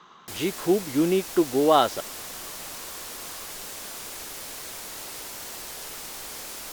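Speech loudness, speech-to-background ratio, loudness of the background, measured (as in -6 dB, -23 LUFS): -23.5 LUFS, 12.0 dB, -35.5 LUFS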